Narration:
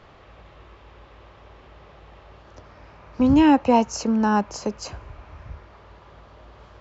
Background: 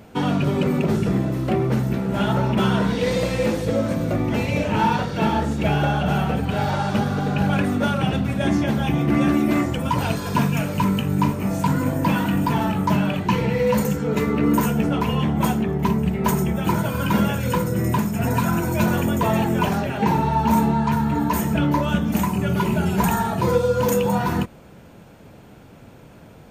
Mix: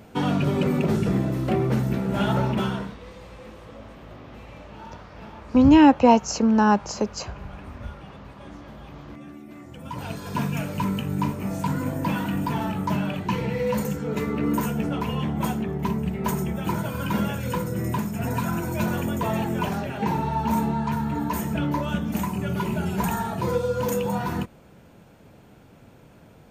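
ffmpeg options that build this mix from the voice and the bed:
-filter_complex "[0:a]adelay=2350,volume=2dB[a];[1:a]volume=16dB,afade=t=out:st=2.41:d=0.56:silence=0.0841395,afade=t=in:st=9.6:d=0.93:silence=0.125893[b];[a][b]amix=inputs=2:normalize=0"

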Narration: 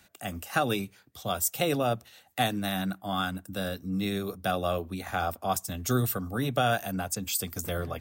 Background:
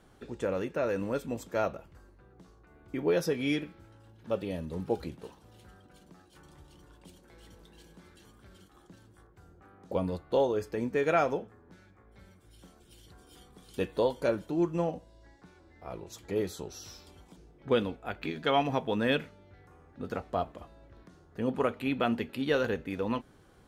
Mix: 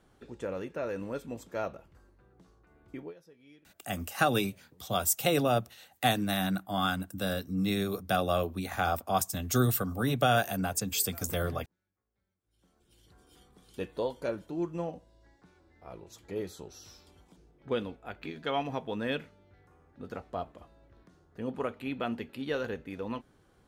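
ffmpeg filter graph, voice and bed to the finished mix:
-filter_complex "[0:a]adelay=3650,volume=0.5dB[a];[1:a]volume=18.5dB,afade=t=out:st=2.9:d=0.24:silence=0.0668344,afade=t=in:st=12.44:d=0.76:silence=0.0707946[b];[a][b]amix=inputs=2:normalize=0"

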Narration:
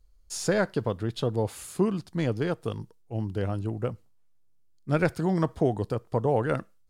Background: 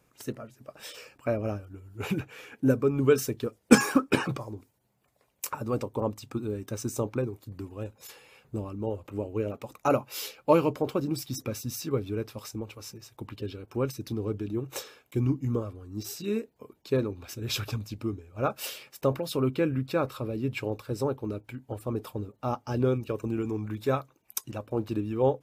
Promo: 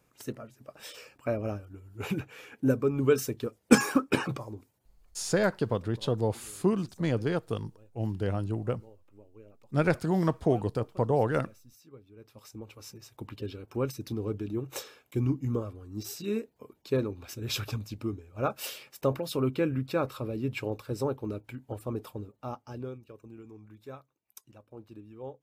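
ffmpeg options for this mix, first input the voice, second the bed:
-filter_complex "[0:a]adelay=4850,volume=-1dB[a];[1:a]volume=19dB,afade=t=out:st=4.93:d=0.46:silence=0.0944061,afade=t=in:st=12.15:d=0.96:silence=0.0891251,afade=t=out:st=21.73:d=1.27:silence=0.158489[b];[a][b]amix=inputs=2:normalize=0"

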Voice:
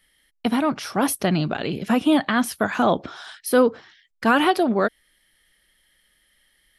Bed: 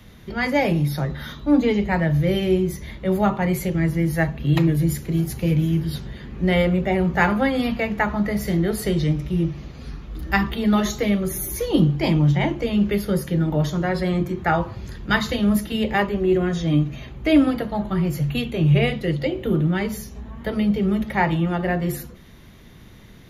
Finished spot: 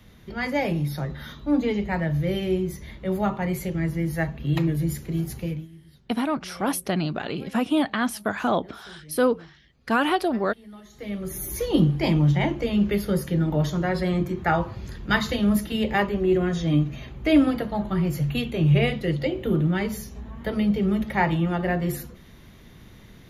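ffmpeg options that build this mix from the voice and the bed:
-filter_complex "[0:a]adelay=5650,volume=-4dB[a];[1:a]volume=19dB,afade=t=out:st=5.36:d=0.32:silence=0.0891251,afade=t=in:st=10.9:d=0.72:silence=0.0630957[b];[a][b]amix=inputs=2:normalize=0"

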